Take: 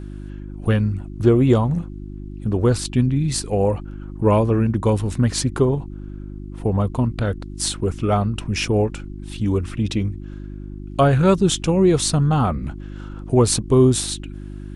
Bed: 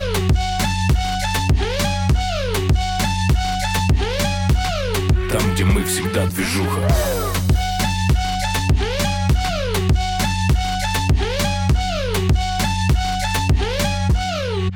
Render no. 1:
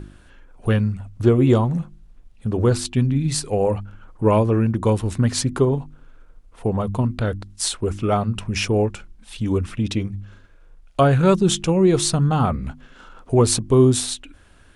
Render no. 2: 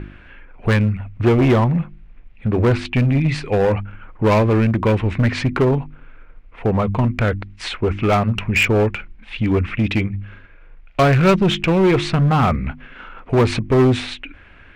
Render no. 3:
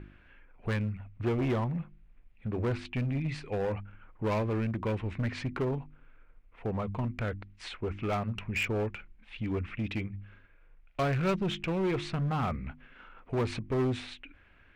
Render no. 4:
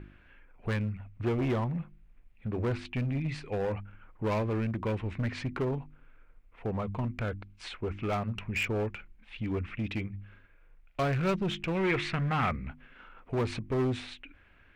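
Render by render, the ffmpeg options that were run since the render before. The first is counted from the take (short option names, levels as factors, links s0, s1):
-af "bandreject=f=50:t=h:w=4,bandreject=f=100:t=h:w=4,bandreject=f=150:t=h:w=4,bandreject=f=200:t=h:w=4,bandreject=f=250:t=h:w=4,bandreject=f=300:t=h:w=4,bandreject=f=350:t=h:w=4"
-filter_complex "[0:a]lowpass=f=2300:t=q:w=3.5,asplit=2[s0][s1];[s1]aeval=exprs='0.141*(abs(mod(val(0)/0.141+3,4)-2)-1)':c=same,volume=0.708[s2];[s0][s2]amix=inputs=2:normalize=0"
-af "volume=0.178"
-filter_complex "[0:a]asettb=1/sr,asplit=3[s0][s1][s2];[s0]atrim=end=7.234[s3];[s1]atrim=start=7.23:end=7.65,asetpts=PTS-STARTPTS,afade=t=in:d=0.004:c=qsin,afade=t=out:st=0.416:d=0.004:c=qsin,asuperstop=centerf=1900:order=4:qfactor=7.8[s4];[s2]atrim=start=7.646[s5];[s3][s4]acrossfade=d=0.004:c1=hsin:c2=qsin[s6];[s6][s5]acrossfade=d=0.004:c1=qsin:c2=hsin,asettb=1/sr,asplit=3[s7][s8][s9];[s7]atrim=end=11.754[s10];[s8]atrim=start=11.75:end=12.51,asetpts=PTS-STARTPTS,afade=t=in:d=0.004:c=qsin,afade=t=out:st=0.756:d=0.004:c=qsin,equalizer=f=2000:w=1.2:g=11.5[s11];[s9]atrim=start=12.506[s12];[s10][s11]acrossfade=d=0.004:c1=hsin:c2=qsin[s13];[s13][s12]acrossfade=d=0.004:c1=qsin:c2=hsin"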